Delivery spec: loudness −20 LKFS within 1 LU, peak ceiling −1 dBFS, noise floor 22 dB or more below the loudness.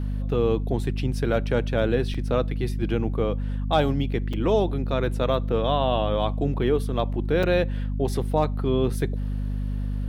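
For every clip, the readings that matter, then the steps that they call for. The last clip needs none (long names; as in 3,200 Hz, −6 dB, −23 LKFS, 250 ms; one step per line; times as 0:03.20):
number of dropouts 3; longest dropout 4.8 ms; mains hum 50 Hz; hum harmonics up to 250 Hz; level of the hum −24 dBFS; integrated loudness −25.0 LKFS; sample peak −8.5 dBFS; target loudness −20.0 LKFS
→ repair the gap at 0:02.14/0:04.33/0:07.43, 4.8 ms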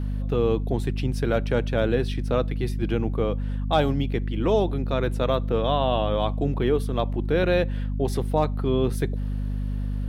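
number of dropouts 0; mains hum 50 Hz; hum harmonics up to 250 Hz; level of the hum −24 dBFS
→ mains-hum notches 50/100/150/200/250 Hz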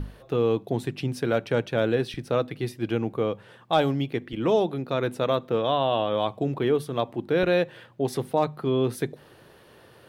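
mains hum none found; integrated loudness −26.5 LKFS; sample peak −10.5 dBFS; target loudness −20.0 LKFS
→ level +6.5 dB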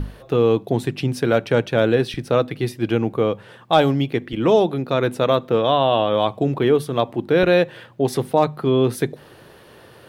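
integrated loudness −20.0 LKFS; sample peak −4.0 dBFS; background noise floor −47 dBFS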